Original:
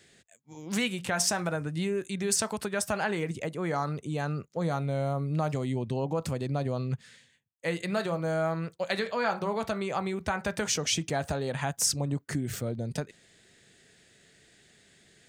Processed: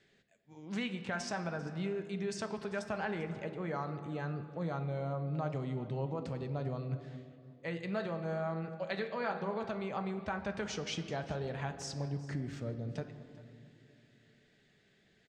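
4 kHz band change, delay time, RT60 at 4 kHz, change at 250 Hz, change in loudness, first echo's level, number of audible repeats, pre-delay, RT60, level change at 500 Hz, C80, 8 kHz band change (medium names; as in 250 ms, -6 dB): -11.5 dB, 394 ms, 1.3 s, -6.5 dB, -8.0 dB, -19.0 dB, 1, 5 ms, 2.4 s, -7.0 dB, 11.0 dB, -19.0 dB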